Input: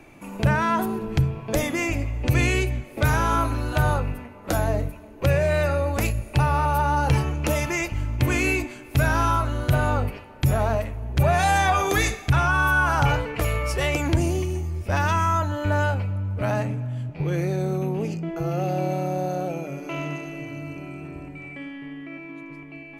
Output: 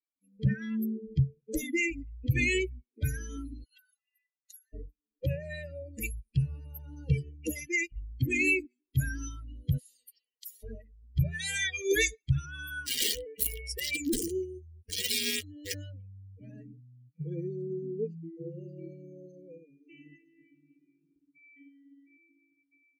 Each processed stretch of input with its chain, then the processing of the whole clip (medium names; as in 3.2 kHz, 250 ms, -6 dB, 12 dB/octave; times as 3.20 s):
3.64–4.73 s: comb 4 ms, depth 100% + compression, threshold -24 dBFS + brick-wall FIR high-pass 730 Hz
9.78–10.63 s: peaking EQ 180 Hz -12 dB 1.3 oct + spectrum-flattening compressor 4:1
12.86–15.74 s: treble shelf 10 kHz +4 dB + integer overflow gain 15.5 dB
whole clip: expander on every frequency bin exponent 3; elliptic band-stop 460–1900 Hz, stop band 40 dB; bass shelf 120 Hz -9.5 dB; trim +4 dB